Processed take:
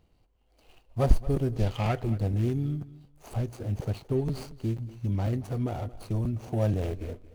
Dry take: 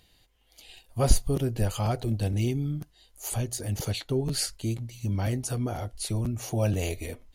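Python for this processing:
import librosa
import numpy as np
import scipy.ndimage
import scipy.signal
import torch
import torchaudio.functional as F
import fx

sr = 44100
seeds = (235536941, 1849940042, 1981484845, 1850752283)

y = scipy.ndimage.median_filter(x, 25, mode='constant')
y = fx.peak_eq(y, sr, hz=fx.line((1.55, 5400.0), (2.02, 1500.0)), db=10.0, octaves=1.3, at=(1.55, 2.02), fade=0.02)
y = fx.echo_feedback(y, sr, ms=227, feedback_pct=17, wet_db=-18.0)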